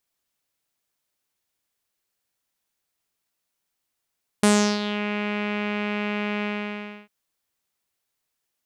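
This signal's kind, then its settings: synth note saw G#3 12 dB/octave, low-pass 2.5 kHz, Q 3.6, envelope 2 oct, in 0.57 s, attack 4.1 ms, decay 0.35 s, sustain -12 dB, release 0.65 s, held 2.00 s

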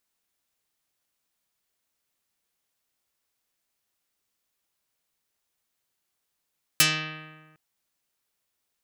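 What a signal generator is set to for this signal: plucked string D#3, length 0.76 s, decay 1.48 s, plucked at 0.44, dark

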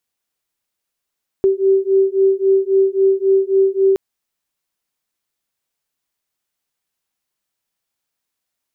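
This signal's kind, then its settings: beating tones 385 Hz, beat 3.7 Hz, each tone -14.5 dBFS 2.52 s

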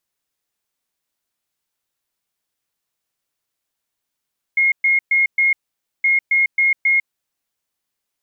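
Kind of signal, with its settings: beep pattern sine 2.15 kHz, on 0.15 s, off 0.12 s, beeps 4, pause 0.51 s, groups 2, -12 dBFS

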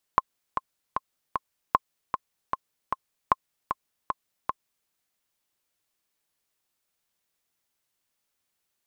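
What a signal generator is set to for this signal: metronome 153 bpm, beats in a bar 4, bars 3, 1.06 kHz, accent 7.5 dB -5 dBFS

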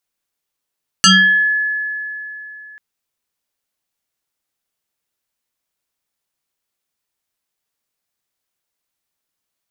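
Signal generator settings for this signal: FM tone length 1.74 s, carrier 1.71 kHz, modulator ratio 0.89, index 4.5, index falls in 0.52 s exponential, decay 3.33 s, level -5 dB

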